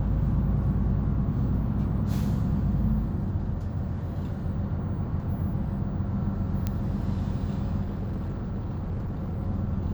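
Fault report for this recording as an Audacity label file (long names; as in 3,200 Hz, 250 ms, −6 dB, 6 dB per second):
6.670000	6.670000	click −15 dBFS
7.810000	9.400000	clipping −27.5 dBFS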